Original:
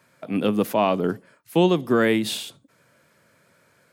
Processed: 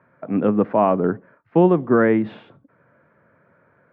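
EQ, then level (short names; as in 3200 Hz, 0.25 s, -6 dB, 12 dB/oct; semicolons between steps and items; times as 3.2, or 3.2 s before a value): LPF 1700 Hz 24 dB/oct; +3.5 dB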